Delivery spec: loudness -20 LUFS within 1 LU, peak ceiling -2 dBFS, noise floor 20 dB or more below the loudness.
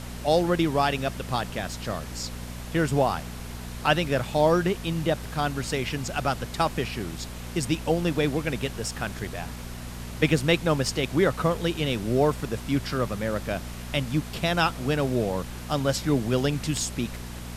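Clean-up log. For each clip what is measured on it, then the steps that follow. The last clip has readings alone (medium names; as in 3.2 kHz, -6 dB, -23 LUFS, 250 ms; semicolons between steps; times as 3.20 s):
hum 60 Hz; highest harmonic 240 Hz; hum level -35 dBFS; noise floor -37 dBFS; noise floor target -47 dBFS; loudness -26.5 LUFS; peak level -5.5 dBFS; loudness target -20.0 LUFS
-> de-hum 60 Hz, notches 4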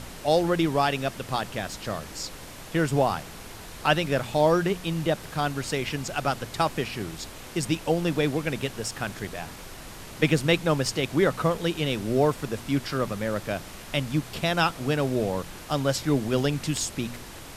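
hum not found; noise floor -42 dBFS; noise floor target -47 dBFS
-> noise print and reduce 6 dB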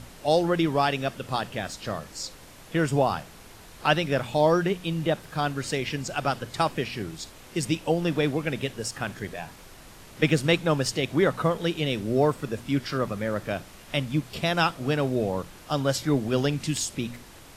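noise floor -48 dBFS; loudness -27.0 LUFS; peak level -5.5 dBFS; loudness target -20.0 LUFS
-> trim +7 dB; peak limiter -2 dBFS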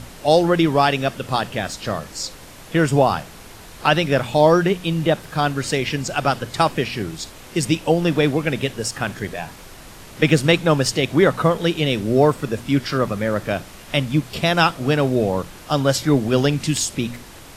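loudness -20.0 LUFS; peak level -2.0 dBFS; noise floor -41 dBFS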